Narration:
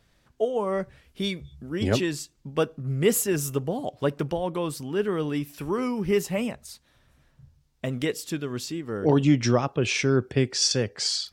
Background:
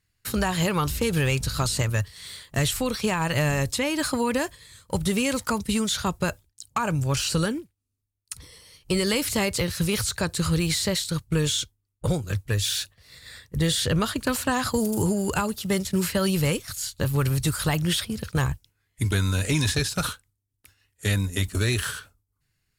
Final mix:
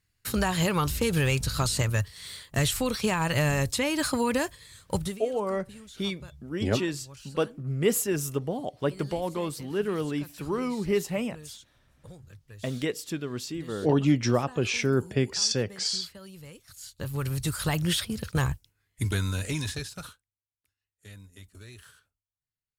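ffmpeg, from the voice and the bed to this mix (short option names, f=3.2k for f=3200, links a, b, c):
-filter_complex "[0:a]adelay=4800,volume=-2.5dB[a];[1:a]volume=19.5dB,afade=t=out:st=4.94:d=0.25:silence=0.0841395,afade=t=in:st=16.54:d=1.36:silence=0.0891251,afade=t=out:st=18.8:d=1.46:silence=0.0841395[b];[a][b]amix=inputs=2:normalize=0"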